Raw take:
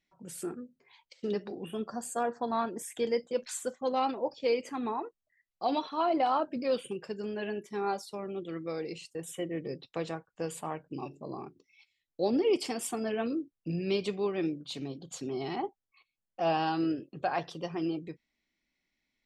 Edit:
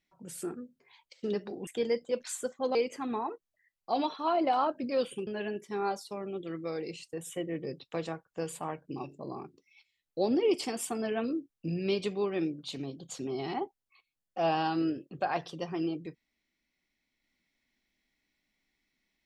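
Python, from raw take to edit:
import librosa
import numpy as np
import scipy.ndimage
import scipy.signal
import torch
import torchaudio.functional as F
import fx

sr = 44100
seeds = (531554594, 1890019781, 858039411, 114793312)

y = fx.edit(x, sr, fx.cut(start_s=1.67, length_s=1.22),
    fx.cut(start_s=3.97, length_s=0.51),
    fx.cut(start_s=7.0, length_s=0.29), tone=tone)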